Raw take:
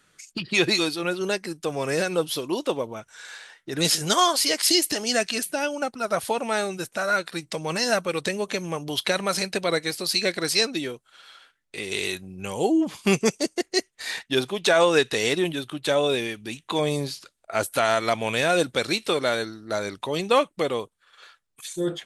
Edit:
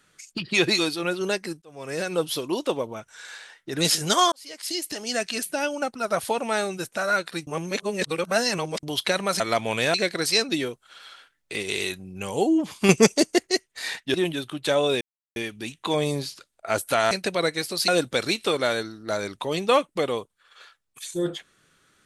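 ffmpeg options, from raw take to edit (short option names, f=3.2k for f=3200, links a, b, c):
-filter_complex "[0:a]asplit=15[a][b][c][d][e][f][g][h][i][j][k][l][m][n][o];[a]atrim=end=1.62,asetpts=PTS-STARTPTS,afade=t=out:st=1.616:d=0.004:c=hsin[p];[b]atrim=start=1.62:end=4.32,asetpts=PTS-STARTPTS,afade=t=in:d=0.62,afade=t=out:st=2.696:d=0.004:c=hsin[q];[c]atrim=start=4.32:end=7.472,asetpts=PTS-STARTPTS,afade=t=in:d=1.29[r];[d]atrim=start=7.468:end=8.832,asetpts=PTS-STARTPTS,areverse[s];[e]atrim=start=8.828:end=9.402[t];[f]atrim=start=17.958:end=18.502[u];[g]atrim=start=10.168:end=10.722[v];[h]atrim=start=10.718:end=11.862,asetpts=PTS-STARTPTS,volume=3dB[w];[i]atrim=start=11.858:end=13.122[x];[j]atrim=start=13.118:end=13.702,asetpts=PTS-STARTPTS,volume=5.5dB[y];[k]atrim=start=13.698:end=14.372[z];[l]atrim=start=15.338:end=16.21,asetpts=PTS-STARTPTS,afade=t=out:st=0.868:d=0.004:c=hsin,apad=pad_dur=0.35[aa];[m]atrim=start=16.21:end=17.962,asetpts=PTS-STARTPTS,afade=t=in:d=0.004:c=hsin[ab];[n]atrim=start=9.398:end=10.172[ac];[o]atrim=start=18.498[ad];[p][q][r]concat=n=3:v=0:a=1[ae];[ae][s]acrossfade=d=0.004:c1=hsin:c2=hsin[af];[af][t]acrossfade=d=0.004:c1=hsin:c2=hsin[ag];[ag][u]acrossfade=d=0.004:c1=hsin:c2=hsin[ah];[ah][v]acrossfade=d=0.004:c1=hsin:c2=hsin[ai];[ai][w]acrossfade=d=0.004:c1=hsin:c2=hsin[aj];[aj][x]acrossfade=d=0.004:c1=hsin:c2=hsin[ak];[ak][y]acrossfade=d=0.004:c1=hsin:c2=hsin[al];[al][z]acrossfade=d=0.004:c1=hsin:c2=hsin[am];[aa][ab]concat=n=2:v=0:a=1[an];[am][an]acrossfade=d=0.004:c1=hsin:c2=hsin[ao];[ao][ac]acrossfade=d=0.004:c1=hsin:c2=hsin[ap];[ap][ad]acrossfade=d=0.004:c1=hsin:c2=hsin"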